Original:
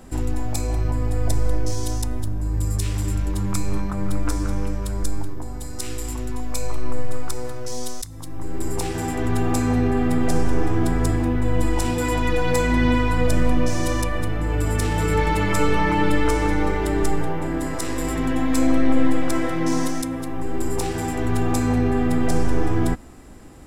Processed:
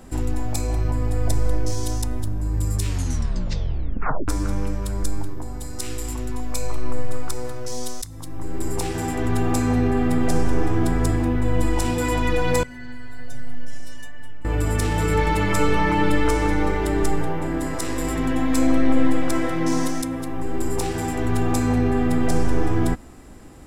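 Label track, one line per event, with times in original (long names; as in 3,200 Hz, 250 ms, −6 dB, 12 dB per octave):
2.850000	2.850000	tape stop 1.43 s
12.630000	14.450000	stiff-string resonator 130 Hz, decay 0.63 s, inharmonicity 0.008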